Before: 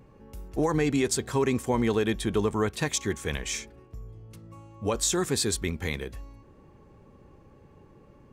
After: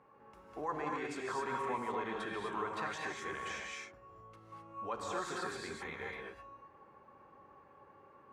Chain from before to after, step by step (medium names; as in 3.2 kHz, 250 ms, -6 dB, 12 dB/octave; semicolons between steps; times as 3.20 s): peak limiter -24 dBFS, peak gain reduction 9 dB; band-pass filter 1.1 kHz, Q 1.6; gated-style reverb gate 280 ms rising, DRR -2 dB; trim +1.5 dB